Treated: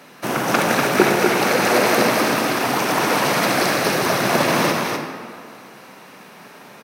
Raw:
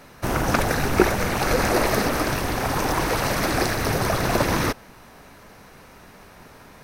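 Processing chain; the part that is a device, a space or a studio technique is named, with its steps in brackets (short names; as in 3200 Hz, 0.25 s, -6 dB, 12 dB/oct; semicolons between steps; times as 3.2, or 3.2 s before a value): stadium PA (HPF 160 Hz 24 dB/oct; bell 2900 Hz +3.5 dB 0.77 oct; loudspeakers at several distances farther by 53 m -12 dB, 84 m -4 dB; reverb RT60 2.1 s, pre-delay 39 ms, DRR 4.5 dB); gain +2 dB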